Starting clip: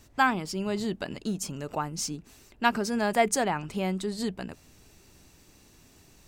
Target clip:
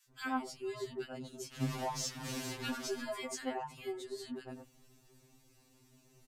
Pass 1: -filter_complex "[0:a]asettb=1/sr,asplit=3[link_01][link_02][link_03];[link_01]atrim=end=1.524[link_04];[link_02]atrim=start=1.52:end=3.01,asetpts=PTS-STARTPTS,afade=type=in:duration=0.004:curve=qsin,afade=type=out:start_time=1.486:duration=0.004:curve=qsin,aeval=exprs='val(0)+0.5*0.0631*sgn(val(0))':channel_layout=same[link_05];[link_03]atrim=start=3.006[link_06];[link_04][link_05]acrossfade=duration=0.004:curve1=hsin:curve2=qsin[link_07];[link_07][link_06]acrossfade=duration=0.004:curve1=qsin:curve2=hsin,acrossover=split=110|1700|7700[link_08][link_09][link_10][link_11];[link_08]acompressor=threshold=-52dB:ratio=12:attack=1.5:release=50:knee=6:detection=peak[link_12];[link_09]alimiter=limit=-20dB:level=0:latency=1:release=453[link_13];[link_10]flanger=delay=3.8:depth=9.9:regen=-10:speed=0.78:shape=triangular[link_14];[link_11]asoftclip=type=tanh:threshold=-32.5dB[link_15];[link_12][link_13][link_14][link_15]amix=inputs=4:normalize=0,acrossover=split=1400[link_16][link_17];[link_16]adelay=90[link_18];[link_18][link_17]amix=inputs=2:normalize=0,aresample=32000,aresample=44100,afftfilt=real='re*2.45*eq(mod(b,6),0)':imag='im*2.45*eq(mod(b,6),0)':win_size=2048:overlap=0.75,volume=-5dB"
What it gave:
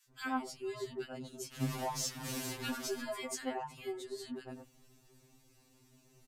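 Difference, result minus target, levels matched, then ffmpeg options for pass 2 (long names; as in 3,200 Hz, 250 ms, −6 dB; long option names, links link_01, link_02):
soft clipping: distortion −8 dB
-filter_complex "[0:a]asettb=1/sr,asplit=3[link_01][link_02][link_03];[link_01]atrim=end=1.524[link_04];[link_02]atrim=start=1.52:end=3.01,asetpts=PTS-STARTPTS,afade=type=in:duration=0.004:curve=qsin,afade=type=out:start_time=1.486:duration=0.004:curve=qsin,aeval=exprs='val(0)+0.5*0.0631*sgn(val(0))':channel_layout=same[link_05];[link_03]atrim=start=3.006[link_06];[link_04][link_05]acrossfade=duration=0.004:curve1=hsin:curve2=qsin[link_07];[link_07][link_06]acrossfade=duration=0.004:curve1=qsin:curve2=hsin,acrossover=split=110|1700|7700[link_08][link_09][link_10][link_11];[link_08]acompressor=threshold=-52dB:ratio=12:attack=1.5:release=50:knee=6:detection=peak[link_12];[link_09]alimiter=limit=-20dB:level=0:latency=1:release=453[link_13];[link_10]flanger=delay=3.8:depth=9.9:regen=-10:speed=0.78:shape=triangular[link_14];[link_11]asoftclip=type=tanh:threshold=-43dB[link_15];[link_12][link_13][link_14][link_15]amix=inputs=4:normalize=0,acrossover=split=1400[link_16][link_17];[link_16]adelay=90[link_18];[link_18][link_17]amix=inputs=2:normalize=0,aresample=32000,aresample=44100,afftfilt=real='re*2.45*eq(mod(b,6),0)':imag='im*2.45*eq(mod(b,6),0)':win_size=2048:overlap=0.75,volume=-5dB"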